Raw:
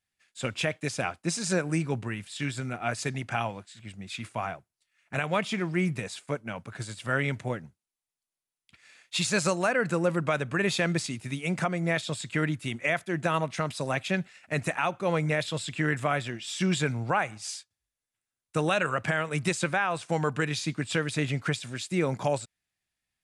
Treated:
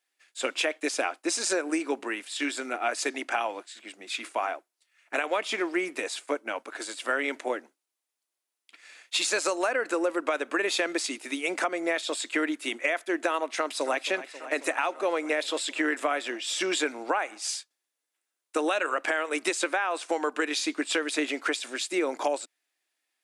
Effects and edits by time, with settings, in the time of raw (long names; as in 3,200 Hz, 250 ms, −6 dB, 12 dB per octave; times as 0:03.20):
0:13.49–0:14.01: delay throw 270 ms, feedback 80%, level −16 dB
whole clip: elliptic high-pass filter 290 Hz, stop band 50 dB; downward compressor, threshold −29 dBFS; level +6 dB